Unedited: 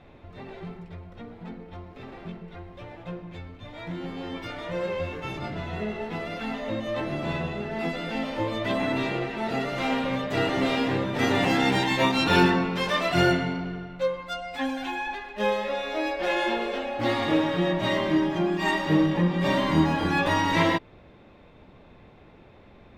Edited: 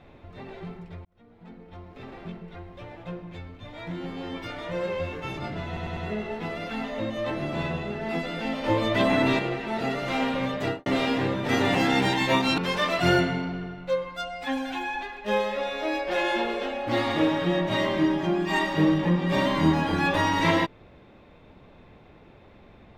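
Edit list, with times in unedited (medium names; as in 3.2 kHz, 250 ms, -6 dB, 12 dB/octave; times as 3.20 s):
1.05–2.03 s: fade in
5.67 s: stutter 0.10 s, 4 plays
8.34–9.09 s: gain +4.5 dB
10.31–10.56 s: studio fade out
12.28–12.70 s: delete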